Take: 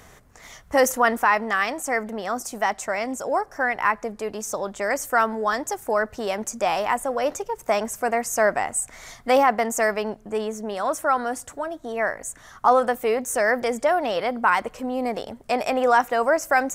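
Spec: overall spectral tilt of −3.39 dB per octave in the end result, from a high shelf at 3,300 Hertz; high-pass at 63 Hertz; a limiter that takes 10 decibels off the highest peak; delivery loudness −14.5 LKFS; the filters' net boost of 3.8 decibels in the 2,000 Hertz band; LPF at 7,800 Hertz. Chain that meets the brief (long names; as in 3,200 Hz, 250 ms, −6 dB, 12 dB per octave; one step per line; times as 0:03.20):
high-pass filter 63 Hz
low-pass filter 7,800 Hz
parametric band 2,000 Hz +6.5 dB
high-shelf EQ 3,300 Hz −6.5 dB
level +11.5 dB
brickwall limiter −3 dBFS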